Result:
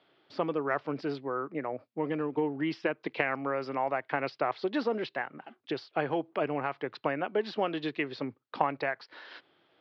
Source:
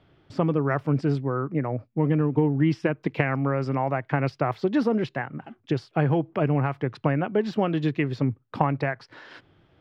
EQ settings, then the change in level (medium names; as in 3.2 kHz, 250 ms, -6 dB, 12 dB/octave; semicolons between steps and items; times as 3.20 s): high-pass 380 Hz 12 dB/octave; resonant low-pass 4.4 kHz, resonance Q 2.2; distance through air 75 m; -3.0 dB